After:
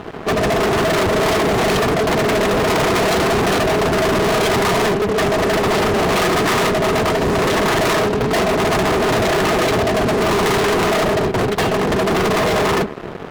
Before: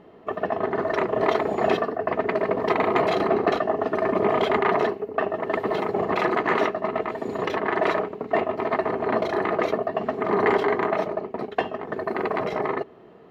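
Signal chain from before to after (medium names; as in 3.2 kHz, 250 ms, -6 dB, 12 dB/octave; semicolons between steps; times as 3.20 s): octave divider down 1 oct, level -2 dB; fuzz box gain 40 dB, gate -49 dBFS; trim -2 dB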